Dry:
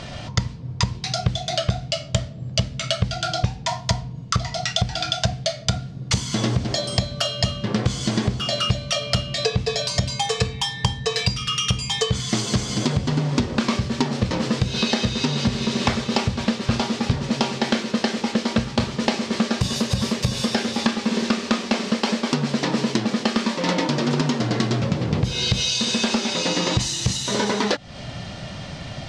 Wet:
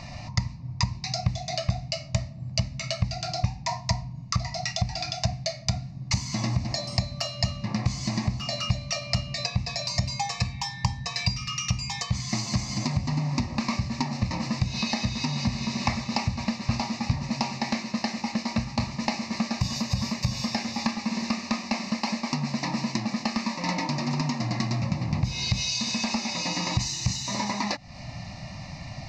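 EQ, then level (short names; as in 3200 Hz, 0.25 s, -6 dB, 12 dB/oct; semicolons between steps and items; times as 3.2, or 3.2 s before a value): fixed phaser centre 2200 Hz, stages 8; -3.0 dB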